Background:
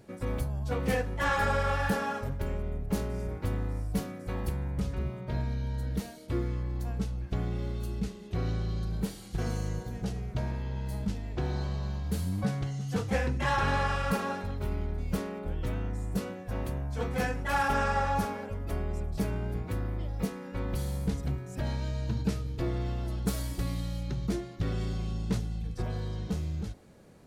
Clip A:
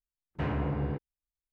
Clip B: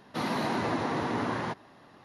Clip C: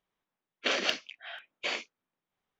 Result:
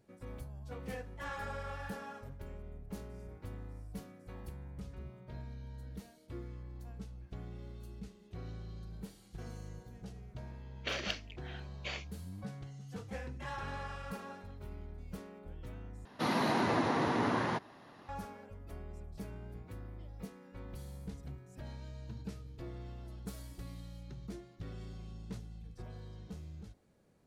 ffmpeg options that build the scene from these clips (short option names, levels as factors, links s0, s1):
-filter_complex "[0:a]volume=0.2,asplit=2[s0][s1];[s0]atrim=end=16.054[s2];[2:a]atrim=end=2.04,asetpts=PTS-STARTPTS,volume=0.891[s3];[s1]atrim=start=18.086[s4];[3:a]atrim=end=2.59,asetpts=PTS-STARTPTS,volume=0.376,afade=t=in:d=0.004:c=hsin,afade=t=out:st=2.586:d=0.004:c=hsin,adelay=10210[s5];[s2][s3]acrossfade=d=0.004:c1=hsin:c2=hsin[s6];[s6][s4]acrossfade=d=0.004:c1=hsin:c2=hsin[s7];[s7][s5]amix=inputs=2:normalize=0"